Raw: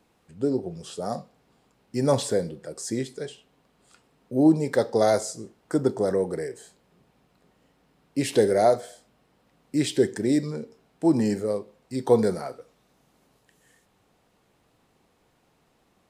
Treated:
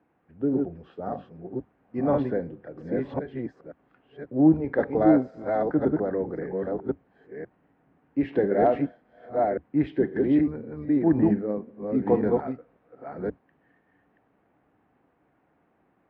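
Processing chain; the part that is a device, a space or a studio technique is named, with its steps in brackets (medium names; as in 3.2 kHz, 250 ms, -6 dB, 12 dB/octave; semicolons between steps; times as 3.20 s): chunks repeated in reverse 532 ms, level -2 dB; sub-octave bass pedal (octave divider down 1 oct, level -5 dB; cabinet simulation 64–2200 Hz, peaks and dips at 98 Hz -7 dB, 290 Hz +7 dB, 740 Hz +4 dB, 1.6 kHz +4 dB); 11.30–12.03 s: peaking EQ 220 Hz +12 dB 0.47 oct; trim -5 dB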